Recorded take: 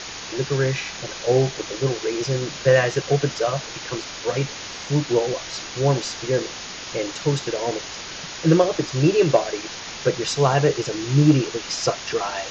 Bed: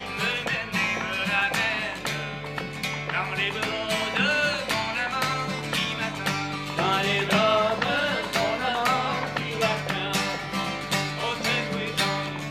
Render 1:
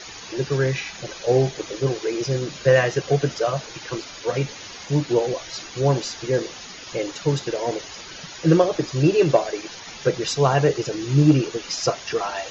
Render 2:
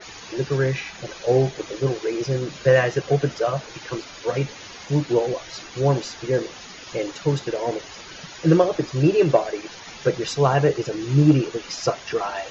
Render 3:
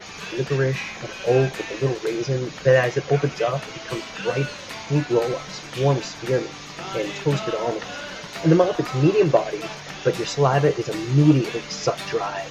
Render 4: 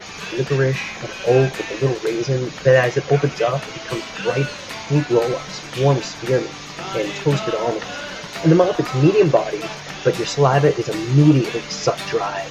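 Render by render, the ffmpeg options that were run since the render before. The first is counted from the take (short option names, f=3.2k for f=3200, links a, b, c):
-af "afftdn=nr=10:nf=-35"
-af "adynamicequalizer=threshold=0.00891:dfrequency=3200:dqfactor=0.7:tfrequency=3200:tqfactor=0.7:attack=5:release=100:ratio=0.375:range=3:mode=cutabove:tftype=highshelf"
-filter_complex "[1:a]volume=-10dB[a];[0:a][a]amix=inputs=2:normalize=0"
-af "volume=3.5dB,alimiter=limit=-3dB:level=0:latency=1"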